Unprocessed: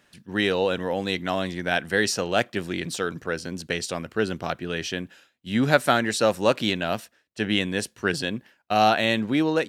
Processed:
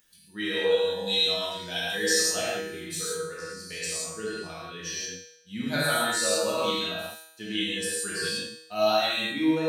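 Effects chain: expander on every frequency bin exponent 1.5; 0.69–1.92 s: resonant high shelf 2.7 kHz +7.5 dB, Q 1.5; reverberation, pre-delay 3 ms, DRR -8 dB; upward compressor, threshold -42 dBFS; tone controls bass -2 dB, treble +12 dB; feedback comb 160 Hz, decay 0.81 s, harmonics all, mix 90%; trim +3 dB

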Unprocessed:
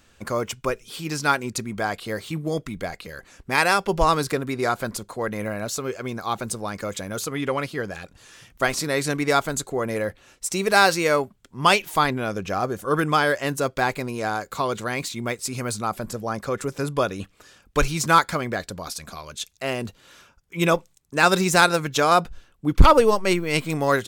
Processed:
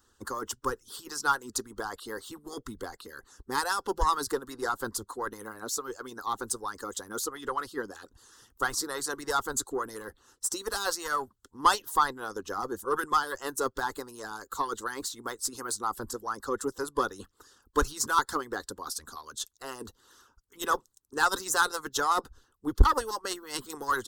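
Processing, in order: single-diode clipper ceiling -13 dBFS; static phaser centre 630 Hz, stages 6; harmonic-percussive split harmonic -18 dB

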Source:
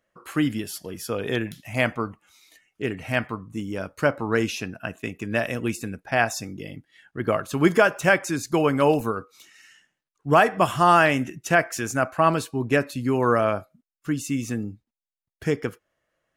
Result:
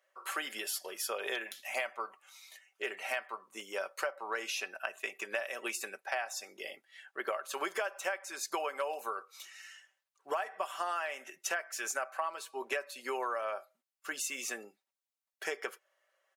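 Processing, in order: high-pass 530 Hz 24 dB/octave; comb 5.2 ms, depth 49%; compression 12:1, threshold -32 dBFS, peak gain reduction 21.5 dB

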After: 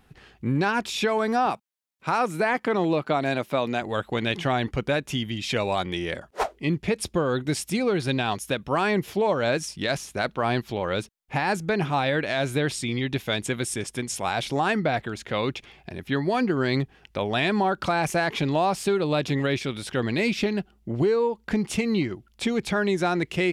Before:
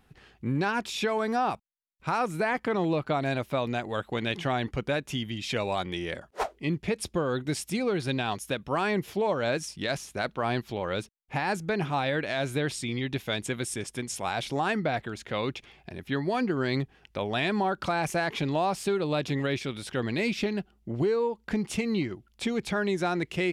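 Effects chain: 1.46–3.82 s: high-pass 160 Hz 12 dB/octave; trim +4 dB

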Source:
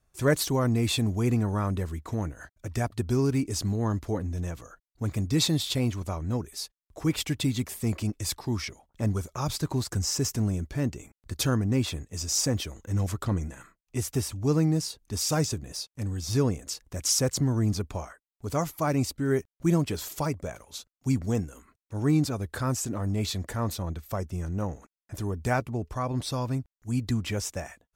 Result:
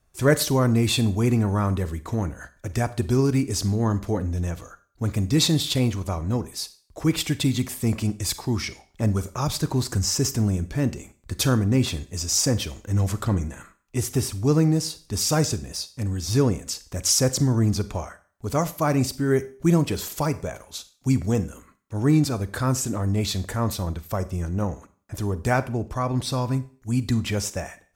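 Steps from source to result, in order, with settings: Schroeder reverb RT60 0.42 s, combs from 31 ms, DRR 14 dB; trim +4.5 dB

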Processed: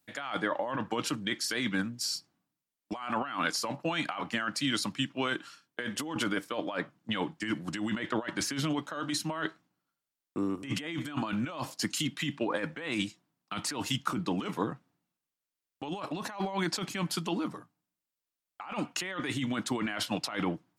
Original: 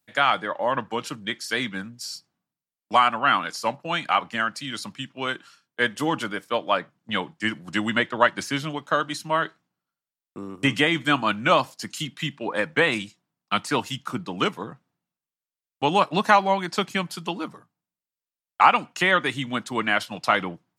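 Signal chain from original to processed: peaking EQ 300 Hz +6 dB 0.36 oct; compressor with a negative ratio -29 dBFS, ratio -1; trim -4 dB

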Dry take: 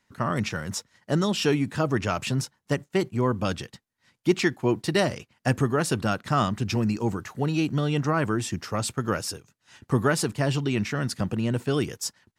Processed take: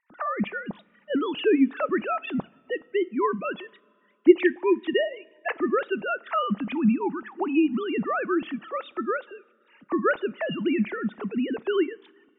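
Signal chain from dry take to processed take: formants replaced by sine waves; two-slope reverb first 0.27 s, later 2.3 s, from -18 dB, DRR 18 dB

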